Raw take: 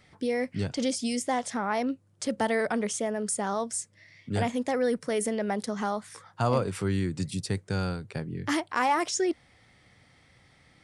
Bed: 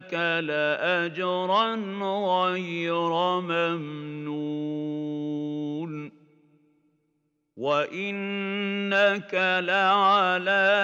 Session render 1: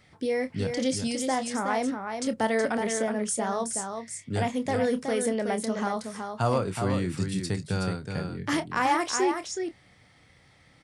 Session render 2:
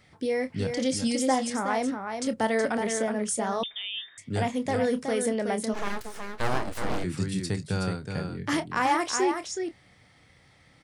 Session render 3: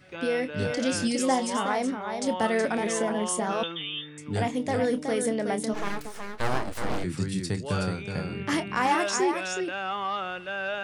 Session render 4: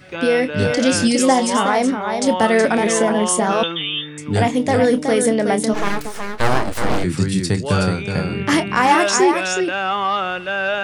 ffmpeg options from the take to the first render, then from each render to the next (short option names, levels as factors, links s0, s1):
-filter_complex "[0:a]asplit=2[s0][s1];[s1]adelay=27,volume=0.282[s2];[s0][s2]amix=inputs=2:normalize=0,asplit=2[s3][s4];[s4]aecho=0:1:371:0.501[s5];[s3][s5]amix=inputs=2:normalize=0"
-filter_complex "[0:a]asettb=1/sr,asplit=3[s0][s1][s2];[s0]atrim=end=0.954[s3];[s1]atrim=start=0.95:end=1.5,asetpts=PTS-STARTPTS,afade=t=in:d=0.004:c=qsin,afade=t=out:st=0.546:d=0.004:c=qsin,aecho=1:1:3.7:0.64,atrim=end_sample=24255[s4];[s2]atrim=start=1.496[s5];[s3][s4]acrossfade=d=0.004:c1=hsin:c2=qsin[s6];[s6][s5]acrossfade=d=0.004:c1=qsin:c2=hsin,asettb=1/sr,asplit=3[s7][s8][s9];[s7]atrim=end=3.634[s10];[s8]atrim=start=3.63:end=4.18,asetpts=PTS-STARTPTS,afade=t=in:d=0.004:c=qsin,afade=t=out:st=0.546:d=0.004:c=qsin,lowpass=f=3200:t=q:w=0.5098,lowpass=f=3200:t=q:w=0.6013,lowpass=f=3200:t=q:w=0.9,lowpass=f=3200:t=q:w=2.563,afreqshift=-3800[s11];[s9]atrim=start=4.176[s12];[s10][s11]acrossfade=d=0.004:c1=hsin:c2=qsin[s13];[s13][s12]acrossfade=d=0.004:c1=qsin:c2=hsin,asplit=3[s14][s15][s16];[s14]afade=t=out:st=5.73:d=0.02[s17];[s15]aeval=exprs='abs(val(0))':c=same,afade=t=in:st=5.73:d=0.02,afade=t=out:st=7.03:d=0.02[s18];[s16]afade=t=in:st=7.03:d=0.02[s19];[s17][s18][s19]amix=inputs=3:normalize=0"
-filter_complex "[1:a]volume=0.299[s0];[0:a][s0]amix=inputs=2:normalize=0"
-af "volume=3.35,alimiter=limit=0.708:level=0:latency=1"